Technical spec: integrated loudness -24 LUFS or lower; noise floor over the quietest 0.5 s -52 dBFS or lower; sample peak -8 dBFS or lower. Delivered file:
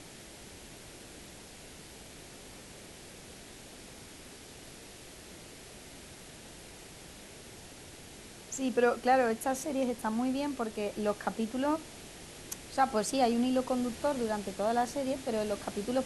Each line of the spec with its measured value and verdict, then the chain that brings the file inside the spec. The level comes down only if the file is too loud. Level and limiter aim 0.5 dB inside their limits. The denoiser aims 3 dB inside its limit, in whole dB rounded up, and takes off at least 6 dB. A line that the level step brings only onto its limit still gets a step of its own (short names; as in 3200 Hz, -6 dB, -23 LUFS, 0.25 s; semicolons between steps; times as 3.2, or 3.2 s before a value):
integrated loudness -31.5 LUFS: OK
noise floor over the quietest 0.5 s -50 dBFS: fail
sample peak -14.0 dBFS: OK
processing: denoiser 6 dB, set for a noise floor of -50 dBFS